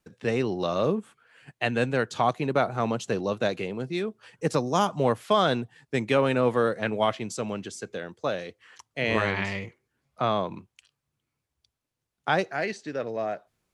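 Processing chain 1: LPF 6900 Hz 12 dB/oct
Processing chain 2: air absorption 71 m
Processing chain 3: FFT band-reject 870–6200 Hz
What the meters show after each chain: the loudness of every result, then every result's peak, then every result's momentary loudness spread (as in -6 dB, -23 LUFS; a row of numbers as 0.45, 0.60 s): -27.5, -28.0, -29.0 LUFS; -9.5, -10.0, -11.5 dBFS; 12, 12, 12 LU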